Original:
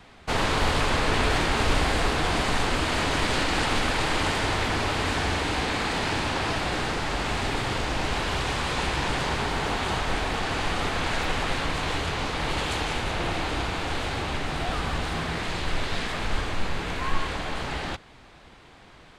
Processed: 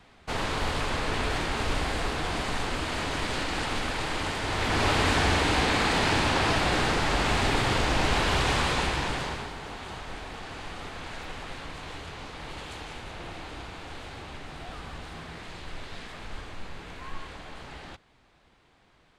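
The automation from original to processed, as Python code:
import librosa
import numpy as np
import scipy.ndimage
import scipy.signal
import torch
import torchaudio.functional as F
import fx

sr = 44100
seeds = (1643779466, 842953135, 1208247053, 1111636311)

y = fx.gain(x, sr, db=fx.line((4.42, -5.5), (4.87, 2.5), (8.6, 2.5), (9.25, -5.0), (9.56, -12.0)))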